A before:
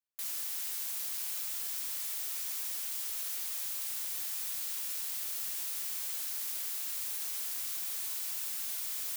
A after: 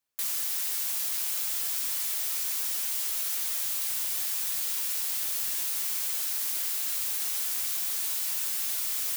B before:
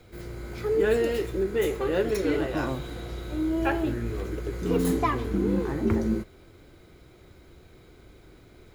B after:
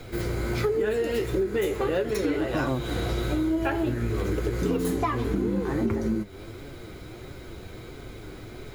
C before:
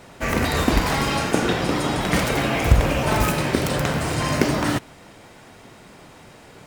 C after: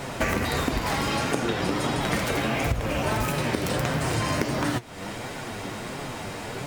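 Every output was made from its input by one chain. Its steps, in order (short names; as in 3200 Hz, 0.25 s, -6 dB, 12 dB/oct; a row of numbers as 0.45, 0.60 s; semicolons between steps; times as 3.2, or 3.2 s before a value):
flange 1.5 Hz, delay 6.9 ms, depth 3.8 ms, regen +52%; compressor 10:1, threshold -38 dBFS; match loudness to -27 LUFS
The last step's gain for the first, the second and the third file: +12.5, +15.5, +15.0 dB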